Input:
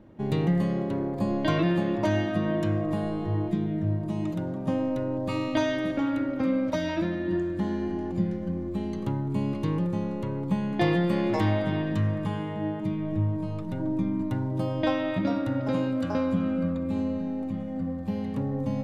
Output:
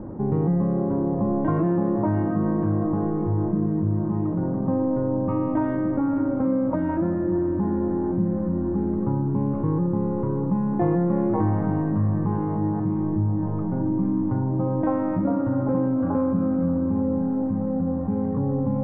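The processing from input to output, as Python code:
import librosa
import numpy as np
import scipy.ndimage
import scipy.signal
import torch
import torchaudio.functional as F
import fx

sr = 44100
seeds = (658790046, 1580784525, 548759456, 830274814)

p1 = scipy.signal.sosfilt(scipy.signal.butter(4, 1200.0, 'lowpass', fs=sr, output='sos'), x)
p2 = fx.notch(p1, sr, hz=630.0, q=12.0)
p3 = p2 + fx.echo_diffused(p2, sr, ms=686, feedback_pct=71, wet_db=-15, dry=0)
p4 = fx.env_flatten(p3, sr, amount_pct=50)
y = p4 * 10.0 ** (1.0 / 20.0)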